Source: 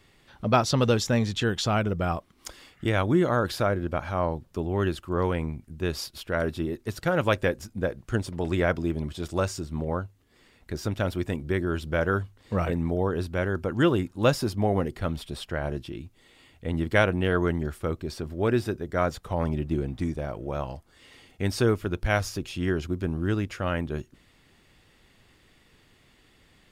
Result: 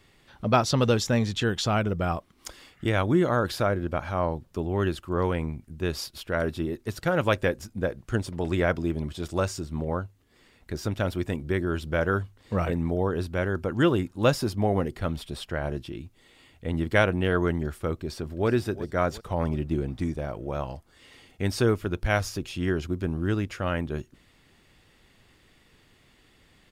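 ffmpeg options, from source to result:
ffmpeg -i in.wav -filter_complex "[0:a]asplit=2[link_01][link_02];[link_02]afade=type=in:start_time=17.97:duration=0.01,afade=type=out:start_time=18.48:duration=0.01,aecho=0:1:360|720|1080|1440|1800:0.177828|0.088914|0.044457|0.0222285|0.0111142[link_03];[link_01][link_03]amix=inputs=2:normalize=0" out.wav

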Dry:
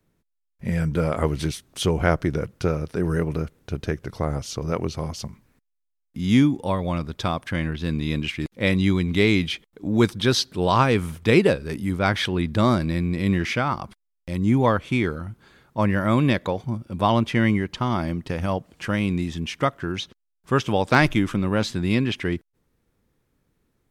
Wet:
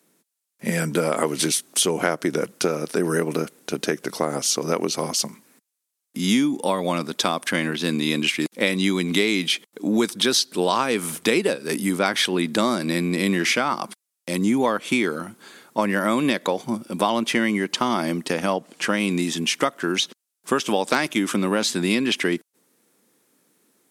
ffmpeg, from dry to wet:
ffmpeg -i in.wav -filter_complex "[0:a]asettb=1/sr,asplit=3[link_01][link_02][link_03];[link_01]atrim=end=18.334[link_04];[link_02]atrim=start=18.33:end=19,asetpts=PTS-STARTPTS,afade=type=in:duration=0.004:curve=qsin,afade=type=out:start_time=0.666:duration=0.004:curve=qsin,highshelf=frequency=8400:gain=-9.5[link_05];[link_03]atrim=start=18.996[link_06];[link_04][link_05]acrossfade=duration=0.004:curve1=hsin:curve2=qsin[link_07];[link_07][link_06]acrossfade=duration=0.004:curve1=qsin:curve2=hsin,highpass=frequency=210:width=0.5412,highpass=frequency=210:width=1.3066,equalizer=frequency=9800:width_type=o:width=1.7:gain=12.5,acompressor=threshold=-24dB:ratio=6,volume=7dB" out.wav

